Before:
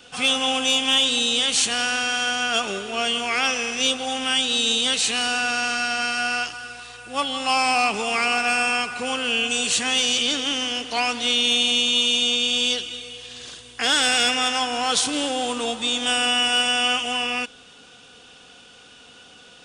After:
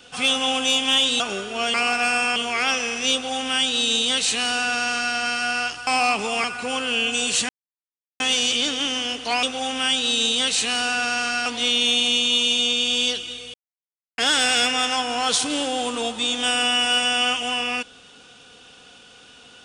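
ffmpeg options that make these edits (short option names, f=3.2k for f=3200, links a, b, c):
-filter_complex "[0:a]asplit=11[a][b][c][d][e][f][g][h][i][j][k];[a]atrim=end=1.202[l];[b]atrim=start=2.578:end=3.122[m];[c]atrim=start=8.188:end=8.812[n];[d]atrim=start=3.118:end=6.632[o];[e]atrim=start=7.618:end=8.192[p];[f]atrim=start=8.808:end=9.86,asetpts=PTS-STARTPTS,afade=t=out:st=1.048:d=0.004:c=hsin,apad=pad_dur=0.71[q];[g]atrim=start=9.86:end=11.092,asetpts=PTS-STARTPTS,afade=t=in:d=0.004:c=hsin[r];[h]atrim=start=3.888:end=5.922[s];[i]atrim=start=11.088:end=13.17,asetpts=PTS-STARTPTS,afade=t=out:st=2.078:d=0.004:c=hsin[t];[j]atrim=start=13.17:end=13.81,asetpts=PTS-STARTPTS,volume=0[u];[k]atrim=start=13.81,asetpts=PTS-STARTPTS,afade=t=in:d=0.004:c=hsin[v];[l][m]acrossfade=d=0.004:c1=hsin:c2=hsin[w];[w][n]acrossfade=d=0.004:c1=hsin:c2=hsin[x];[x][o]acrossfade=d=0.004:c1=hsin:c2=hsin[y];[y][p]acrossfade=d=0.004:c1=hsin:c2=hsin[z];[q][r]concat=n=2:v=0:a=1[aa];[z][aa]acrossfade=d=0.004:c1=hsin:c2=hsin[ab];[ab][s]acrossfade=d=0.004:c1=hsin:c2=hsin[ac];[t][u][v]concat=n=3:v=0:a=1[ad];[ac][ad]acrossfade=d=0.004:c1=hsin:c2=hsin"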